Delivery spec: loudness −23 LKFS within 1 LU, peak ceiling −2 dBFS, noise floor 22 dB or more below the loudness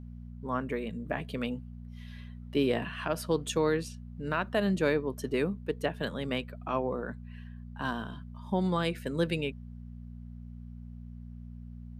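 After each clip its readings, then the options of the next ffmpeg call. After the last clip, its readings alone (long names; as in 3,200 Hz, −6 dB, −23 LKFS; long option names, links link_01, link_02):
mains hum 60 Hz; hum harmonics up to 240 Hz; level of the hum −42 dBFS; integrated loudness −32.5 LKFS; sample peak −16.0 dBFS; target loudness −23.0 LKFS
→ -af "bandreject=frequency=60:width_type=h:width=4,bandreject=frequency=120:width_type=h:width=4,bandreject=frequency=180:width_type=h:width=4,bandreject=frequency=240:width_type=h:width=4"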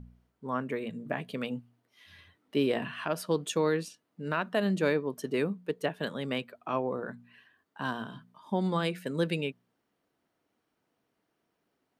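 mains hum none found; integrated loudness −32.5 LKFS; sample peak −16.0 dBFS; target loudness −23.0 LKFS
→ -af "volume=9.5dB"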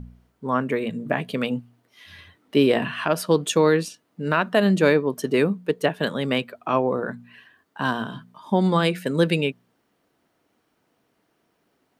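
integrated loudness −23.0 LKFS; sample peak −6.5 dBFS; background noise floor −70 dBFS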